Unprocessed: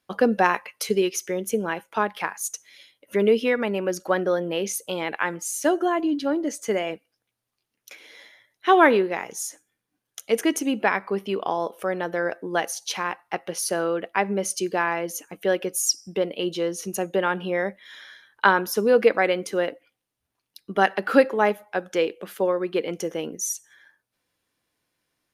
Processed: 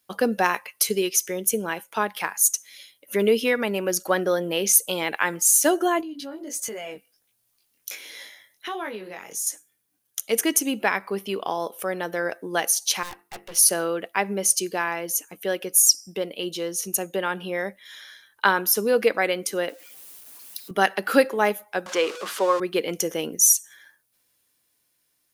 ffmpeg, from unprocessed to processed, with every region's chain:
-filter_complex "[0:a]asettb=1/sr,asplit=3[s0][s1][s2];[s0]atrim=end=6.014[s3];[s1]atrim=start=6.01:end=9.47,asetpts=PTS-STARTPTS,afade=t=in:d=0.004:c=qsin,afade=t=out:st=3.456:d=0.004:c=qsin,flanger=delay=18:depth=4.2:speed=1.4,acompressor=threshold=0.0141:ratio=3:attack=3.2:release=140:knee=1:detection=peak[s4];[s2]atrim=start=9.466[s5];[s3][s4]acrossfade=d=0.004:c1=hsin:c2=qsin[s6];[s6][s5]acrossfade=d=0.004:c1=qsin:c2=hsin,asettb=1/sr,asplit=3[s7][s8][s9];[s7]atrim=end=13.034[s10];[s8]atrim=start=13.03:end=13.56,asetpts=PTS-STARTPTS,afade=t=in:d=0.004:c=qsin,afade=t=out:st=0.526:d=0.004:c=qsin,bandreject=f=50:t=h:w=6,bandreject=f=100:t=h:w=6,bandreject=f=150:t=h:w=6,bandreject=f=200:t=h:w=6,bandreject=f=250:t=h:w=6,bandreject=f=300:t=h:w=6,bandreject=f=350:t=h:w=6,bandreject=f=400:t=h:w=6,bandreject=f=450:t=h:w=6,aeval=exprs='(tanh(50.1*val(0)+0.75)-tanh(0.75))/50.1':c=same[s11];[s9]atrim=start=13.556[s12];[s10][s11]acrossfade=d=0.004:c1=hsin:c2=qsin[s13];[s13][s12]acrossfade=d=0.004:c1=qsin:c2=hsin,asettb=1/sr,asplit=3[s14][s15][s16];[s14]atrim=end=19.694[s17];[s15]atrim=start=19.69:end=20.71,asetpts=PTS-STARTPTS,afade=t=in:d=0.004:c=qsin,afade=t=out:st=1.016:d=0.004:c=qsin,aeval=exprs='val(0)+0.5*0.00376*sgn(val(0))':c=same,highpass=260[s18];[s16]atrim=start=20.706[s19];[s17][s18]acrossfade=d=0.004:c1=hsin:c2=qsin[s20];[s20][s19]acrossfade=d=0.004:c1=qsin:c2=hsin,asettb=1/sr,asplit=3[s21][s22][s23];[s21]atrim=end=21.864[s24];[s22]atrim=start=21.86:end=22.6,asetpts=PTS-STARTPTS,afade=t=in:d=0.004:c=qsin,afade=t=out:st=0.736:d=0.004:c=qsin,aeval=exprs='val(0)+0.5*0.0237*sgn(val(0))':c=same,highpass=310,lowpass=5700,equalizer=f=1100:w=3.2:g=10[s25];[s23]atrim=start=22.596[s26];[s24][s25]acrossfade=d=0.004:c1=hsin:c2=qsin[s27];[s27][s26]acrossfade=d=0.004:c1=qsin:c2=hsin,aemphasis=mode=production:type=75kf,dynaudnorm=f=250:g=13:m=3.76,volume=0.708"

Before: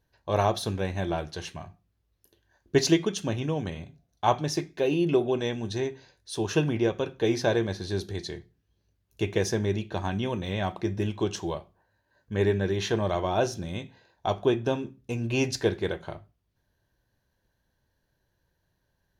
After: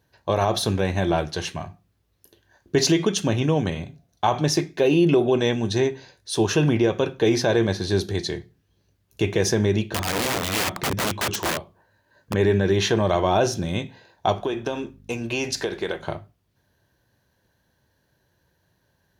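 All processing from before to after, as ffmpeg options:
-filter_complex "[0:a]asettb=1/sr,asplit=3[s0][s1][s2];[s0]atrim=end=9.874[s3];[s1]atrim=start=9.87:end=12.34,asetpts=PTS-STARTPTS,afade=t=in:d=0.004:c=qsin,afade=t=out:st=2.466:d=0.004:c=qsin,bandreject=f=750:w=13,aeval=exprs='(mod(22.4*val(0)+1,2)-1)/22.4':c=same[s4];[s2]atrim=start=12.336[s5];[s3][s4]acrossfade=d=0.004:c1=hsin:c2=qsin[s6];[s6][s5]acrossfade=d=0.004:c1=qsin:c2=hsin,asettb=1/sr,asplit=3[s7][s8][s9];[s7]atrim=end=14.404[s10];[s8]atrim=start=14.4:end=16.03,asetpts=PTS-STARTPTS,afade=t=in:d=0.004:c=qsin,afade=t=out:st=1.626:d=0.004:c=qsin,highpass=f=440:p=1,acompressor=threshold=0.0355:ratio=10:attack=3.2:release=140:knee=1:detection=peak,aeval=exprs='val(0)+0.002*(sin(2*PI*50*n/s)+sin(2*PI*2*50*n/s)/2+sin(2*PI*3*50*n/s)/3+sin(2*PI*4*50*n/s)/4+sin(2*PI*5*50*n/s)/5)':c=same[s11];[s9]atrim=start=16.026[s12];[s10][s11]acrossfade=d=0.004:c1=hsin:c2=qsin[s13];[s13][s12]acrossfade=d=0.004:c1=qsin:c2=hsin,highpass=76,alimiter=level_in=7.08:limit=0.891:release=50:level=0:latency=1,volume=0.376"

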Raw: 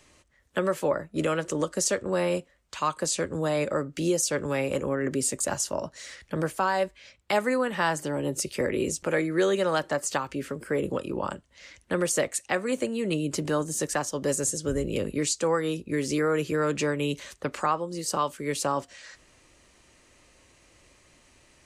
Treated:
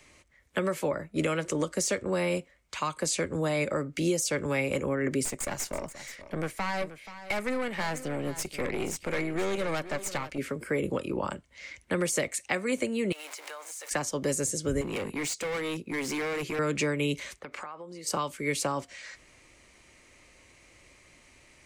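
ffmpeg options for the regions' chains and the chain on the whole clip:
-filter_complex "[0:a]asettb=1/sr,asplit=3[s0][s1][s2];[s0]atrim=end=5.254[s3];[s1]atrim=start=5.25:end=10.38,asetpts=PTS-STARTPTS,afade=t=in:d=0.004:c=qsin,afade=t=out:st=5.126:d=0.004:c=qsin,aeval=exprs='(tanh(20*val(0)+0.75)-tanh(0.75))/20':c=same,aecho=1:1:479:0.188,atrim=end_sample=226233[s4];[s2]atrim=start=10.376[s5];[s3][s4]acrossfade=d=0.004:c1=hsin:c2=qsin[s6];[s6][s5]acrossfade=d=0.004:c1=qsin:c2=hsin,asettb=1/sr,asplit=3[s7][s8][s9];[s7]atrim=end=13.124[s10];[s8]atrim=start=13.12:end=13.91,asetpts=PTS-STARTPTS,afade=t=in:d=0.004:c=qsin,afade=t=out:st=0.786:d=0.004:c=qsin,aeval=exprs='val(0)+0.5*0.0188*sgn(val(0))':c=same,highpass=f=650:w=0.5412,highpass=f=650:w=1.3066,acompressor=threshold=0.0126:ratio=10:attack=3.2:release=140:knee=1:detection=peak[s11];[s9]atrim=start=13.906[s12];[s10][s11]acrossfade=d=0.004:c1=hsin:c2=qsin[s13];[s13][s12]acrossfade=d=0.004:c1=qsin:c2=hsin,asettb=1/sr,asplit=3[s14][s15][s16];[s14]atrim=end=14.814[s17];[s15]atrim=start=14.81:end=16.59,asetpts=PTS-STARTPTS,afade=t=in:d=0.004:c=qsin,afade=t=out:st=1.776:d=0.004:c=qsin,highpass=130,asoftclip=type=hard:threshold=0.0316[s18];[s16]atrim=start=16.586[s19];[s17][s18]acrossfade=d=0.004:c1=hsin:c2=qsin[s20];[s20][s19]acrossfade=d=0.004:c1=qsin:c2=hsin,asettb=1/sr,asplit=3[s21][s22][s23];[s21]atrim=end=17.394[s24];[s22]atrim=start=17.39:end=18.07,asetpts=PTS-STARTPTS,afade=t=in:d=0.004:c=qsin,afade=t=out:st=0.676:d=0.004:c=qsin,lowpass=f=3300:p=1,acompressor=threshold=0.0178:ratio=12:attack=3.2:release=140:knee=1:detection=peak,lowshelf=f=300:g=-8[s25];[s23]atrim=start=18.066[s26];[s24][s25]acrossfade=d=0.004:c1=hsin:c2=qsin[s27];[s27][s26]acrossfade=d=0.004:c1=qsin:c2=hsin,deesser=0.45,equalizer=f=2200:w=6.2:g=9.5,acrossover=split=280|3000[s28][s29][s30];[s29]acompressor=threshold=0.0447:ratio=6[s31];[s28][s31][s30]amix=inputs=3:normalize=0"

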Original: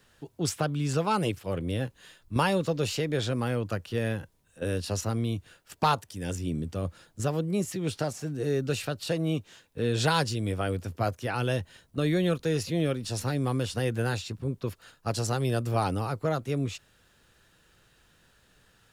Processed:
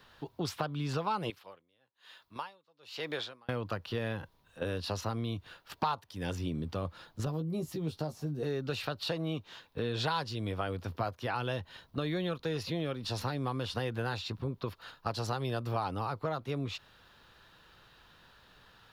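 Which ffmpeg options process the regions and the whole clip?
-filter_complex "[0:a]asettb=1/sr,asplit=3[s0][s1][s2];[s0]atrim=end=1.304[s3];[s1]atrim=start=1.3:end=3.49,asetpts=PTS-STARTPTS,afade=t=in:d=0.004:c=qsin,afade=t=out:st=2.186:d=0.004:c=qsin,highpass=f=770:p=1,aeval=exprs='val(0)*pow(10,-38*(0.5-0.5*cos(2*PI*1.1*n/s))/20)':c=same[s4];[s2]atrim=start=3.486[s5];[s3][s4]acrossfade=d=0.004:c1=hsin:c2=qsin[s6];[s6][s5]acrossfade=d=0.004:c1=qsin:c2=hsin,asettb=1/sr,asplit=3[s7][s8][s9];[s7]atrim=end=7.254[s10];[s8]atrim=start=7.25:end=8.43,asetpts=PTS-STARTPTS,afade=t=in:d=0.004:c=qsin,afade=t=out:st=1.176:d=0.004:c=qsin,equalizer=f=1900:w=0.39:g=-13,asplit=2[s11][s12];[s12]adelay=13,volume=0.562[s13];[s11][s13]amix=inputs=2:normalize=0,atrim=end_sample=52038[s14];[s9]atrim=start=8.426[s15];[s10][s14]acrossfade=d=0.004:c1=hsin:c2=qsin[s16];[s16][s15]acrossfade=d=0.004:c1=qsin:c2=hsin,equalizer=f=1000:t=o:w=1:g=9,equalizer=f=4000:t=o:w=1:g=8,equalizer=f=8000:t=o:w=1:g=-12,acompressor=threshold=0.0224:ratio=3"

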